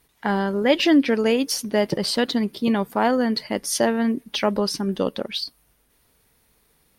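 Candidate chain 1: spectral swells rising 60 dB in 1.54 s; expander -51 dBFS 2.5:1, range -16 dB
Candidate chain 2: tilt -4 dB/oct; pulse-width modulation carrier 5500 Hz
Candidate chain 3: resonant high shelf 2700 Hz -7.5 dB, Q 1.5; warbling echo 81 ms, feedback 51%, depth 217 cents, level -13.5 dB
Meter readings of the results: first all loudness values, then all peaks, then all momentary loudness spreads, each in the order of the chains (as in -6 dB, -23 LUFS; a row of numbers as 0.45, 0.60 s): -18.0, -16.5, -22.0 LUFS; -2.0, -1.5, -5.0 dBFS; 6, 11, 9 LU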